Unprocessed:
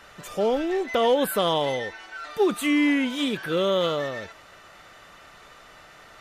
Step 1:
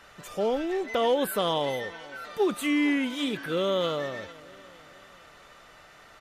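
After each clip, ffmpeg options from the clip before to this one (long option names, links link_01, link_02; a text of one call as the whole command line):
ffmpeg -i in.wav -af "aecho=1:1:452|904|1356|1808:0.0891|0.0446|0.0223|0.0111,volume=-3.5dB" out.wav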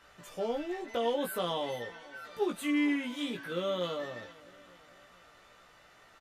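ffmpeg -i in.wav -filter_complex "[0:a]asplit=2[link_01][link_02];[link_02]adelay=17,volume=-2.5dB[link_03];[link_01][link_03]amix=inputs=2:normalize=0,volume=-8.5dB" out.wav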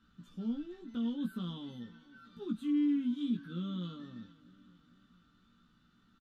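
ffmpeg -i in.wav -af "firequalizer=gain_entry='entry(130,0);entry(220,12);entry(370,-11);entry(590,-27);entry(1400,-8);entry(2000,-23);entry(3500,-7);entry(5100,-15);entry(9900,-22)':delay=0.05:min_phase=1,volume=-1.5dB" out.wav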